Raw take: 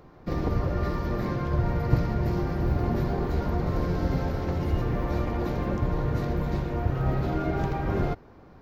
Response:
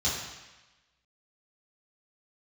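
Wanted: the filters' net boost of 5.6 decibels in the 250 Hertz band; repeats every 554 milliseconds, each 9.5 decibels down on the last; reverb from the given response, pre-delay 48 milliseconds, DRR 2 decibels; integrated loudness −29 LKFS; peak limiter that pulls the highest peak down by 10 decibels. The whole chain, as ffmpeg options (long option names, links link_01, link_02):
-filter_complex "[0:a]equalizer=frequency=250:width_type=o:gain=8,alimiter=limit=-18dB:level=0:latency=1,aecho=1:1:554|1108|1662|2216:0.335|0.111|0.0365|0.012,asplit=2[link_01][link_02];[1:a]atrim=start_sample=2205,adelay=48[link_03];[link_02][link_03]afir=irnorm=-1:irlink=0,volume=-11dB[link_04];[link_01][link_04]amix=inputs=2:normalize=0,volume=-7dB"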